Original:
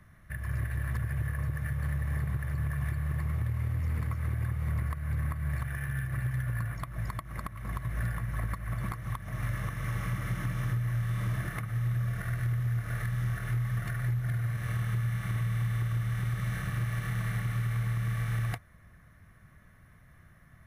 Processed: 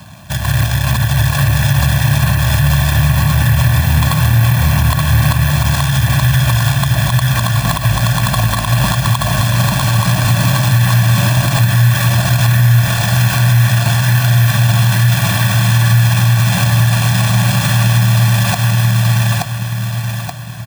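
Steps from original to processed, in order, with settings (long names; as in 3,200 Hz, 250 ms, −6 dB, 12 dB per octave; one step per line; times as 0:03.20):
running median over 25 samples
high-pass filter 94 Hz 12 dB per octave
spectral tilt +3 dB per octave
comb filter 1.2 ms, depth 95%
repeating echo 876 ms, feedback 39%, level −3 dB
boost into a limiter +28 dB
level −1 dB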